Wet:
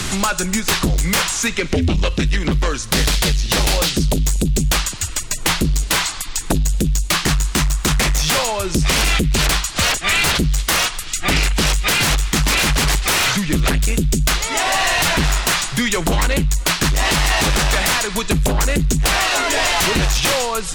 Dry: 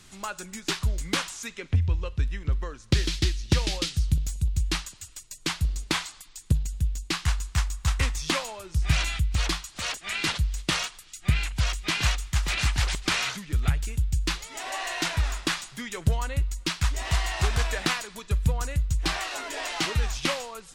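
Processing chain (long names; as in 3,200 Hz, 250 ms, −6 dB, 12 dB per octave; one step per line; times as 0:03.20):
sine wavefolder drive 18 dB, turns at −8.5 dBFS
multiband upward and downward compressor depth 70%
level −4.5 dB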